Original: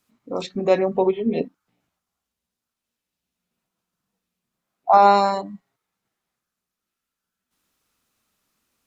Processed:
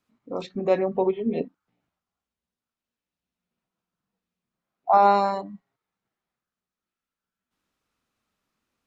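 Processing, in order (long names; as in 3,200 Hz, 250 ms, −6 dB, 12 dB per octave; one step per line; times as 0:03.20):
low-pass filter 2,900 Hz 6 dB per octave
level −3.5 dB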